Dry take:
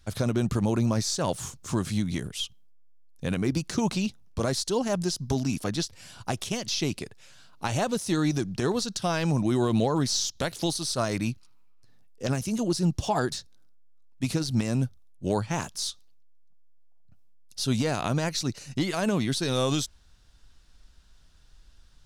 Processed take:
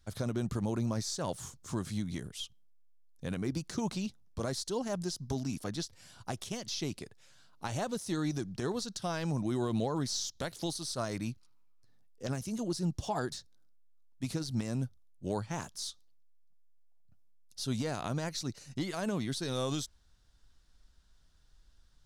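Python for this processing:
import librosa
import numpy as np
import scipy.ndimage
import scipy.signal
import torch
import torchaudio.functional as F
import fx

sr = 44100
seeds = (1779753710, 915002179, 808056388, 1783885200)

y = fx.peak_eq(x, sr, hz=2600.0, db=-4.0, octaves=0.4)
y = y * 10.0 ** (-8.0 / 20.0)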